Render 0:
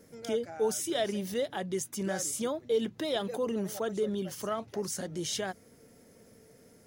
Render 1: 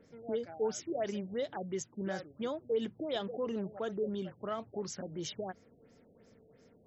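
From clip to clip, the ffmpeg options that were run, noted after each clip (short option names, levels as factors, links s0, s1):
-af "afftfilt=real='re*lt(b*sr/1024,770*pow(8000/770,0.5+0.5*sin(2*PI*2.9*pts/sr)))':imag='im*lt(b*sr/1024,770*pow(8000/770,0.5+0.5*sin(2*PI*2.9*pts/sr)))':win_size=1024:overlap=0.75,volume=0.631"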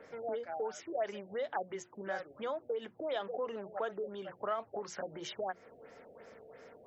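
-filter_complex "[0:a]acompressor=threshold=0.00501:ratio=4,acrossover=split=510 2500:gain=0.126 1 0.2[s0][s1][s2];[s0][s1][s2]amix=inputs=3:normalize=0,bandreject=f=60:t=h:w=6,bandreject=f=120:t=h:w=6,bandreject=f=180:t=h:w=6,bandreject=f=240:t=h:w=6,bandreject=f=300:t=h:w=6,bandreject=f=360:t=h:w=6,volume=5.96"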